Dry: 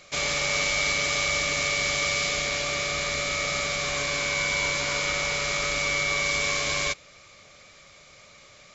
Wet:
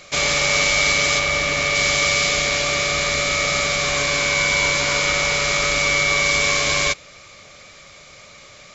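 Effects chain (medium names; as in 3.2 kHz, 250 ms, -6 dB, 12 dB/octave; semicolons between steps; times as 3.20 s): 1.18–1.74 s: treble shelf 3.9 kHz -> 5.4 kHz -8.5 dB; trim +7.5 dB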